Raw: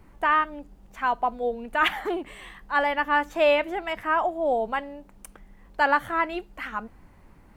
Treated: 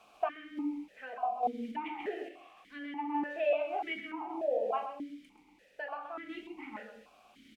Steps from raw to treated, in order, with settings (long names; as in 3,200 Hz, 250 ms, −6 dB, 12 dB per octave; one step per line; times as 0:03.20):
convolution reverb RT60 0.40 s, pre-delay 5 ms, DRR 1.5 dB
in parallel at −6.5 dB: bit-depth reduction 6 bits, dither triangular
on the sum: downward compressor 6 to 1, threshold −19 dBFS, peak gain reduction 11.5 dB
single-tap delay 130 ms −6 dB
sample-and-hold tremolo
formant filter that steps through the vowels 3.4 Hz